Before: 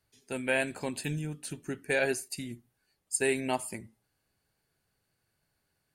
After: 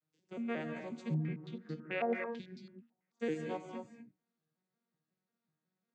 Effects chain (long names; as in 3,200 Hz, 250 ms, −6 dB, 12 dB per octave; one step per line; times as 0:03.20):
vocoder with an arpeggio as carrier minor triad, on D#3, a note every 182 ms
reverb whose tail is shaped and stops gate 270 ms rising, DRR 4.5 dB
0:01.14–0:03.20: low-pass on a step sequencer 9.1 Hz 810–4,600 Hz
level −6.5 dB